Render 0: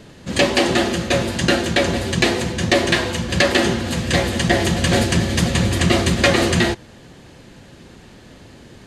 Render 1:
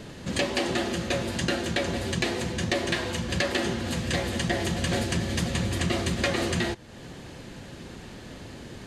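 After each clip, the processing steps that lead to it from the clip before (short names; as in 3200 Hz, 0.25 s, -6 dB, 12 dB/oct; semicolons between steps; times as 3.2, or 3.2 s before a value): compressor 2:1, threshold -34 dBFS, peak gain reduction 13 dB; gain +1 dB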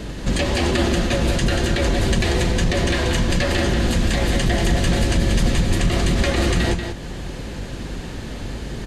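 octaver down 2 oct, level +4 dB; limiter -19 dBFS, peak gain reduction 7.5 dB; echo 0.186 s -6.5 dB; gain +8 dB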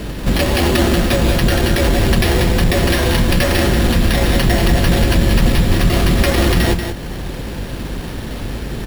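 careless resampling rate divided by 6×, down none, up hold; gain +5 dB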